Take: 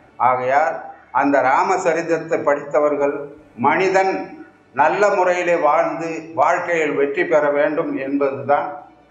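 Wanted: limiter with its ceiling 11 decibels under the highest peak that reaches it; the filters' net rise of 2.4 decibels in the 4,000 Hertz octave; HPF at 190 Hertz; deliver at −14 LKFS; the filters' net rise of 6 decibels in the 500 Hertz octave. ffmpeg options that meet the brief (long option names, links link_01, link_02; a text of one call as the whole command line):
ffmpeg -i in.wav -af "highpass=190,equalizer=frequency=500:width_type=o:gain=7.5,equalizer=frequency=4000:width_type=o:gain=3.5,volume=5dB,alimiter=limit=-4.5dB:level=0:latency=1" out.wav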